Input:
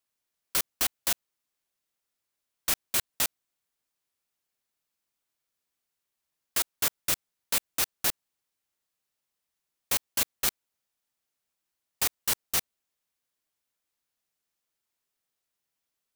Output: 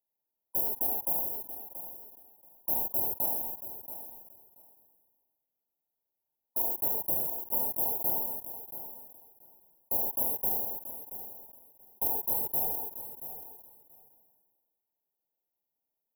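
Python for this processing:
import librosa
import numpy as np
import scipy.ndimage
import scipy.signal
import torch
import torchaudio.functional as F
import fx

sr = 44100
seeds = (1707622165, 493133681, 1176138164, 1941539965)

p1 = fx.brickwall_bandstop(x, sr, low_hz=970.0, high_hz=11000.0)
p2 = fx.low_shelf(p1, sr, hz=190.0, db=-7.5)
p3 = p2 + fx.echo_feedback(p2, sr, ms=680, feedback_pct=16, wet_db=-12, dry=0)
p4 = fx.rev_gated(p3, sr, seeds[0], gate_ms=150, shape='flat', drr_db=4.0)
p5 = fx.sustainer(p4, sr, db_per_s=35.0)
y = F.gain(torch.from_numpy(p5), -1.0).numpy()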